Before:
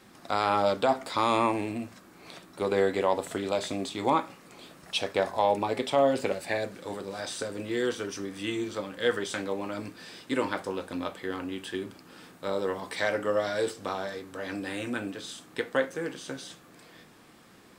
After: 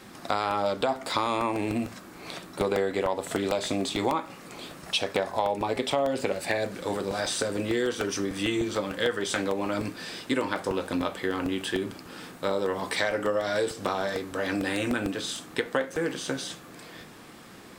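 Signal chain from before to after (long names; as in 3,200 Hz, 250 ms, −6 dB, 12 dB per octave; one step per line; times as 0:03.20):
downward compressor 5 to 1, threshold −31 dBFS, peak gain reduction 11.5 dB
regular buffer underruns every 0.15 s, samples 64, repeat, from 0:00.51
level +7.5 dB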